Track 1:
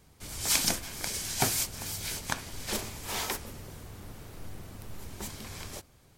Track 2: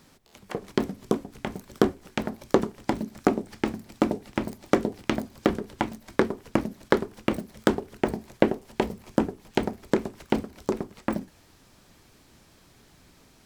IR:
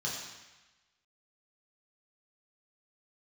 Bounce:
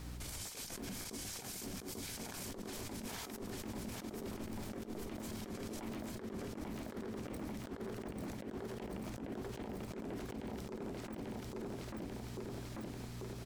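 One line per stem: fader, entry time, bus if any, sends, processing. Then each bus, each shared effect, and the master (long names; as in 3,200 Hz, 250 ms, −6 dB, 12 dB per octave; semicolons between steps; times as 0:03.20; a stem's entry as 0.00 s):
−1.0 dB, 0.00 s, no send, echo send −9 dB, no processing
−1.5 dB, 0.00 s, no send, echo send −3.5 dB, brickwall limiter −13.5 dBFS, peak gain reduction 11 dB; mains hum 60 Hz, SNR 16 dB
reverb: not used
echo: repeating echo 841 ms, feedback 44%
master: compressor whose output falls as the input rises −34 dBFS, ratio −0.5; brickwall limiter −35.5 dBFS, peak gain reduction 23 dB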